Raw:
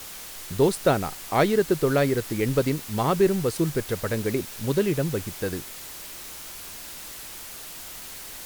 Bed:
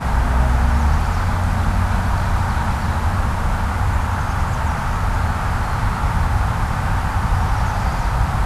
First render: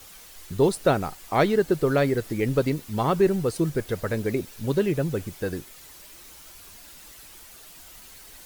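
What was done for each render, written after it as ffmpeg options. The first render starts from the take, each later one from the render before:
-af "afftdn=nr=9:nf=-40"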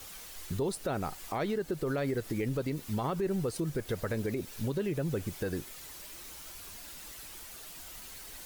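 -af "acompressor=threshold=-30dB:ratio=2,alimiter=limit=-23.5dB:level=0:latency=1:release=71"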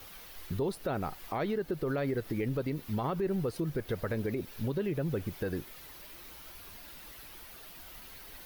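-af "equalizer=f=7.7k:t=o:w=0.98:g=-12"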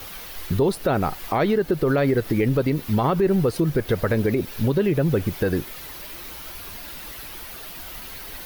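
-af "volume=12dB"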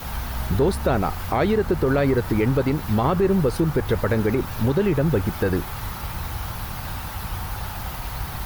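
-filter_complex "[1:a]volume=-12.5dB[a];[0:a][a]amix=inputs=2:normalize=0"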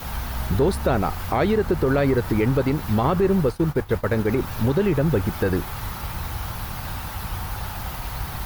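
-filter_complex "[0:a]asplit=3[a][b][c];[a]afade=t=out:st=3.33:d=0.02[d];[b]agate=range=-33dB:threshold=-20dB:ratio=3:release=100:detection=peak,afade=t=in:st=3.33:d=0.02,afade=t=out:st=4.29:d=0.02[e];[c]afade=t=in:st=4.29:d=0.02[f];[d][e][f]amix=inputs=3:normalize=0"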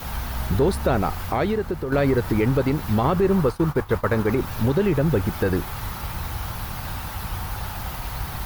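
-filter_complex "[0:a]asettb=1/sr,asplit=3[a][b][c];[a]atrim=end=3.314[d];[b]atrim=start=3.31:end=4.32,asetpts=PTS-STARTPTS,afade=t=in:d=0.004:c=qsin,afade=t=out:st=1.006:d=0.004:c=qsin,equalizer=f=1.1k:t=o:w=0.69:g=6.5[e];[c]atrim=start=4.316[f];[d][e]acrossfade=d=0.004:c1=hsin:c2=qsin[g];[g][f]acrossfade=d=0.004:c1=qsin:c2=hsin,asplit=2[h][i];[h]atrim=end=1.92,asetpts=PTS-STARTPTS,afade=t=out:st=1.18:d=0.74:silence=0.354813[j];[i]atrim=start=1.92,asetpts=PTS-STARTPTS,afade=t=in:d=0.004:c=hsin:silence=0.354813[k];[j][k]concat=n=2:v=0:a=1"

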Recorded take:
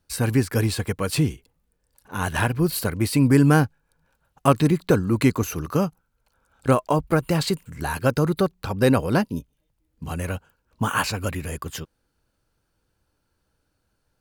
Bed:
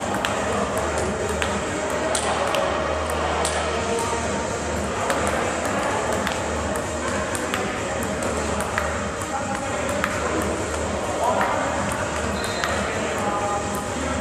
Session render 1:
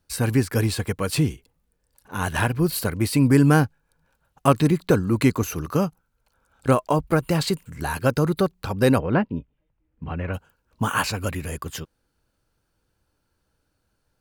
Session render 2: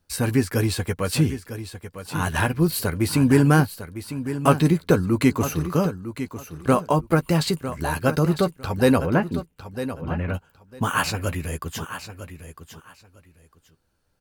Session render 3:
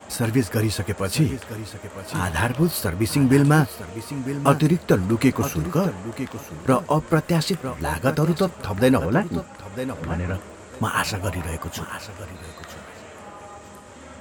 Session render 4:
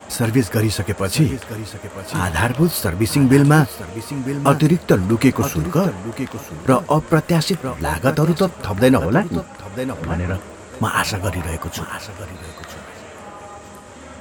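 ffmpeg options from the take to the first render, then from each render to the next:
-filter_complex "[0:a]asplit=3[a][b][c];[a]afade=t=out:st=8.98:d=0.02[d];[b]lowpass=f=2.7k:w=0.5412,lowpass=f=2.7k:w=1.3066,afade=t=in:st=8.98:d=0.02,afade=t=out:st=10.33:d=0.02[e];[c]afade=t=in:st=10.33:d=0.02[f];[d][e][f]amix=inputs=3:normalize=0"
-filter_complex "[0:a]asplit=2[a][b];[b]adelay=12,volume=-10dB[c];[a][c]amix=inputs=2:normalize=0,aecho=1:1:953|1906:0.266|0.0506"
-filter_complex "[1:a]volume=-17dB[a];[0:a][a]amix=inputs=2:normalize=0"
-af "volume=4dB,alimiter=limit=-1dB:level=0:latency=1"

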